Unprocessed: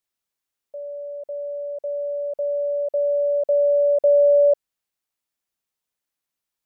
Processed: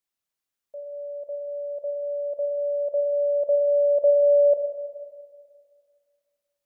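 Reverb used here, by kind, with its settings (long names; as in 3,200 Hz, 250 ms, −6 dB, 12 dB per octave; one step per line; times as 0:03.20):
four-comb reverb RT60 2 s, combs from 27 ms, DRR 4 dB
level −3.5 dB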